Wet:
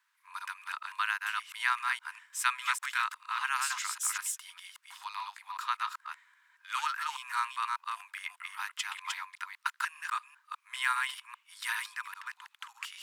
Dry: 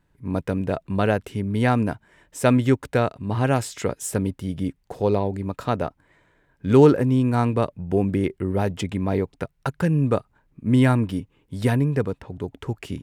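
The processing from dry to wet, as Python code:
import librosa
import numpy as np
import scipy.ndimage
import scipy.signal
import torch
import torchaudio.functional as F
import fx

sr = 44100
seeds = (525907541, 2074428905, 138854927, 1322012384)

y = fx.reverse_delay(x, sr, ms=199, wet_db=-3.0)
y = fx.dmg_noise_colour(y, sr, seeds[0], colour='brown', level_db=-60.0)
y = scipy.signal.sosfilt(scipy.signal.butter(12, 1000.0, 'highpass', fs=sr, output='sos'), y)
y = y * librosa.db_to_amplitude(-1.0)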